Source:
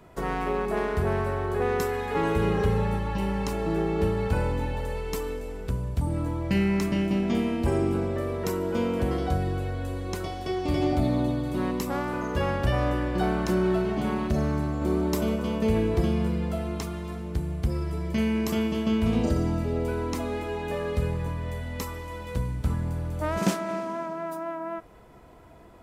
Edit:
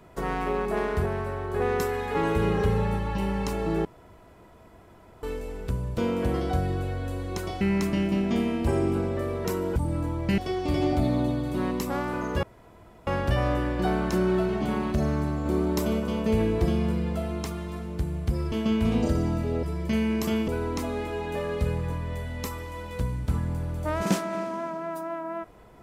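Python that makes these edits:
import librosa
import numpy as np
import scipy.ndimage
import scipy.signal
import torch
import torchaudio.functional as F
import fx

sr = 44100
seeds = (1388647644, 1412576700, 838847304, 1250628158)

y = fx.edit(x, sr, fx.clip_gain(start_s=1.06, length_s=0.48, db=-3.5),
    fx.room_tone_fill(start_s=3.85, length_s=1.38),
    fx.swap(start_s=5.98, length_s=0.62, other_s=8.75, other_length_s=1.63),
    fx.insert_room_tone(at_s=12.43, length_s=0.64),
    fx.move(start_s=17.88, length_s=0.85, to_s=19.84), tone=tone)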